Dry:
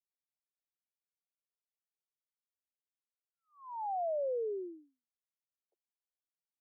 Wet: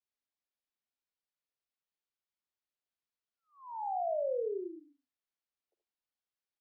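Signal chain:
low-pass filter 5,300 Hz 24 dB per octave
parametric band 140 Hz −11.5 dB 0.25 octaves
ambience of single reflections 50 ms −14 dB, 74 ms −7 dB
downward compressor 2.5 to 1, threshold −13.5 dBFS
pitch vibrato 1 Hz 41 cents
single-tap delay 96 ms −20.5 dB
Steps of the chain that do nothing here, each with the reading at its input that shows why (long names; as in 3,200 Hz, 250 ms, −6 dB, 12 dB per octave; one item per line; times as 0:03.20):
low-pass filter 5,300 Hz: nothing at its input above 1,100 Hz
parametric band 140 Hz: nothing at its input below 290 Hz
downward compressor, threshold −13.5 dBFS: peak of its input −26.0 dBFS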